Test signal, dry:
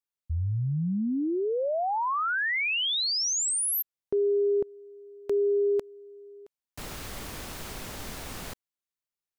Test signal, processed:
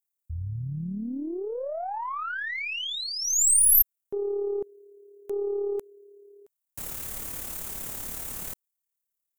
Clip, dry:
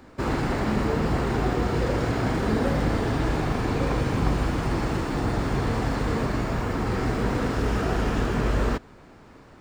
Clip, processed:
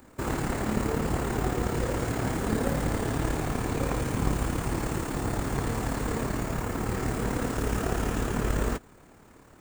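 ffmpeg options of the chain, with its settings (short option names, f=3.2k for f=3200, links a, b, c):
-af "aexciter=amount=5.3:drive=2.5:freq=6.7k,aeval=exprs='0.398*(cos(1*acos(clip(val(0)/0.398,-1,1)))-cos(1*PI/2))+0.0891*(cos(2*acos(clip(val(0)/0.398,-1,1)))-cos(2*PI/2))+0.00708*(cos(7*acos(clip(val(0)/0.398,-1,1)))-cos(7*PI/2))':c=same,tremolo=f=36:d=0.462,volume=-1.5dB"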